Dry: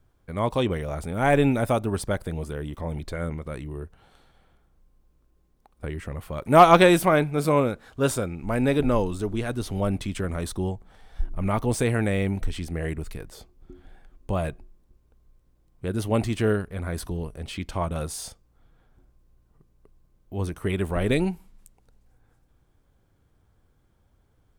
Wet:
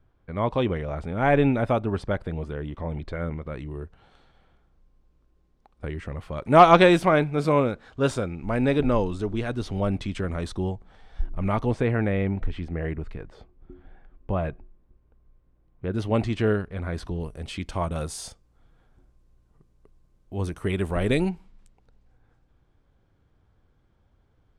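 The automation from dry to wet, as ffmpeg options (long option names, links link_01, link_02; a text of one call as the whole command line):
ffmpeg -i in.wav -af "asetnsamples=nb_out_samples=441:pad=0,asendcmd='3.58 lowpass f 5400;11.71 lowpass f 2300;15.93 lowpass f 4500;17.2 lowpass f 9600;21.29 lowpass f 4600',lowpass=3200" out.wav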